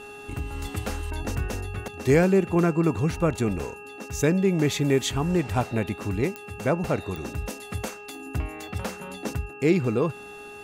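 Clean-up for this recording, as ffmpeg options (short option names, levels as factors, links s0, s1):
-af "adeclick=t=4,bandreject=f=412.7:t=h:w=4,bandreject=f=825.4:t=h:w=4,bandreject=f=1238.1:t=h:w=4,bandreject=f=1650.8:t=h:w=4,bandreject=f=2700:w=30"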